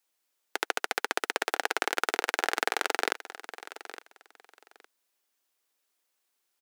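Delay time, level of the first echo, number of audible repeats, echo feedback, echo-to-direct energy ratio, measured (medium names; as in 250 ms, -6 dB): 862 ms, -15.0 dB, 2, 20%, -15.0 dB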